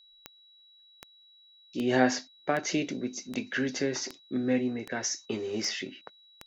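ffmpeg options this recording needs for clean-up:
ffmpeg -i in.wav -af "adeclick=threshold=4,bandreject=frequency=3900:width=30" out.wav

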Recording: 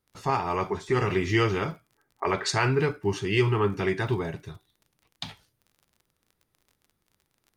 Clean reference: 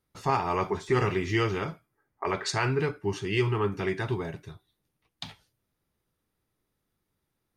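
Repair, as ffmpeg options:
ffmpeg -i in.wav -af "adeclick=threshold=4,asetnsamples=nb_out_samples=441:pad=0,asendcmd='1.1 volume volume -3dB',volume=0dB" out.wav

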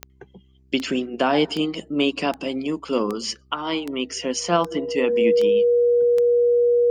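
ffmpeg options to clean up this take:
ffmpeg -i in.wav -af "adeclick=threshold=4,bandreject=frequency=65.5:width_type=h:width=4,bandreject=frequency=131:width_type=h:width=4,bandreject=frequency=196.5:width_type=h:width=4,bandreject=frequency=262:width_type=h:width=4,bandreject=frequency=327.5:width_type=h:width=4,bandreject=frequency=393:width_type=h:width=4,bandreject=frequency=480:width=30" out.wav

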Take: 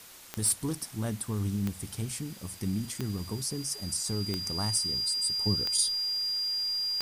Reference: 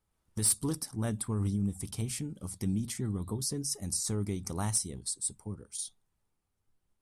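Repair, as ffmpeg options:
ffmpeg -i in.wav -af "adeclick=threshold=4,bandreject=frequency=4800:width=30,afwtdn=0.0035,asetnsamples=nb_out_samples=441:pad=0,asendcmd='5.38 volume volume -10dB',volume=0dB" out.wav

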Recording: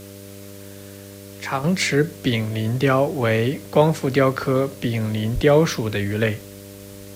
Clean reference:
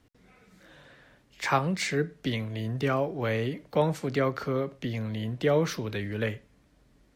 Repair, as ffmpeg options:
ffmpeg -i in.wav -filter_complex "[0:a]bandreject=frequency=99.1:width_type=h:width=4,bandreject=frequency=198.2:width_type=h:width=4,bandreject=frequency=297.3:width_type=h:width=4,bandreject=frequency=396.4:width_type=h:width=4,bandreject=frequency=495.5:width_type=h:width=4,bandreject=frequency=594.6:width_type=h:width=4,asplit=3[link_01][link_02][link_03];[link_01]afade=type=out:start_time=5.34:duration=0.02[link_04];[link_02]highpass=frequency=140:width=0.5412,highpass=frequency=140:width=1.3066,afade=type=in:start_time=5.34:duration=0.02,afade=type=out:start_time=5.46:duration=0.02[link_05];[link_03]afade=type=in:start_time=5.46:duration=0.02[link_06];[link_04][link_05][link_06]amix=inputs=3:normalize=0,afwtdn=0.0056,asetnsamples=nb_out_samples=441:pad=0,asendcmd='1.64 volume volume -9dB',volume=0dB" out.wav

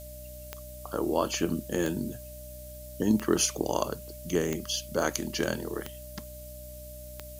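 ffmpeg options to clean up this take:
ffmpeg -i in.wav -af "adeclick=threshold=4,bandreject=frequency=62.2:width_type=h:width=4,bandreject=frequency=124.4:width_type=h:width=4,bandreject=frequency=186.6:width_type=h:width=4,bandreject=frequency=248.8:width_type=h:width=4,bandreject=frequency=311:width_type=h:width=4,bandreject=frequency=600:width=30,afftdn=noise_reduction=30:noise_floor=-44" out.wav

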